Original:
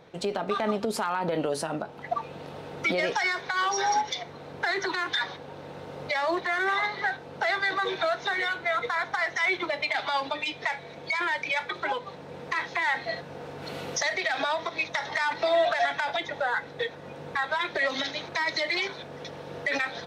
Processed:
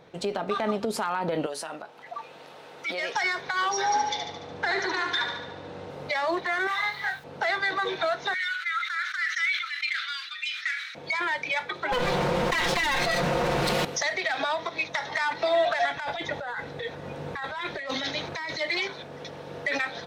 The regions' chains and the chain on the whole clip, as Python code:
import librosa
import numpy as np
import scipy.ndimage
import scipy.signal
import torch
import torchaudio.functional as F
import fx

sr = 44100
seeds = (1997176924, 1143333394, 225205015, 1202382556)

y = fx.chain(x, sr, fx.highpass(hz=930.0, slope=6),
    fx.transient(attack_db=-7, sustain_db=0), at=(1.46, 3.15))
y = fx.chain(y, sr, fx.lowpass(hz=7900.0, slope=12),
    fx.echo_feedback(ms=73, feedback_pct=57, wet_db=-6.0), at=(3.86, 5.9))
y = fx.chain(y, sr, fx.peak_eq(hz=350.0, db=-13.5, octaves=2.5),
    fx.quant_dither(seeds[0], bits=10, dither='none'),
    fx.doubler(ms=29.0, db=-2), at=(6.67, 7.24))
y = fx.chain(y, sr, fx.cheby1_highpass(hz=1300.0, order=6),
    fx.sustainer(db_per_s=59.0), at=(8.34, 10.95))
y = fx.chain(y, sr, fx.lower_of_two(delay_ms=5.6),
    fx.env_flatten(amount_pct=100), at=(11.92, 13.85))
y = fx.chain(y, sr, fx.low_shelf(hz=76.0, db=12.0),
    fx.over_compress(threshold_db=-32.0, ratio=-1.0), at=(15.97, 18.61))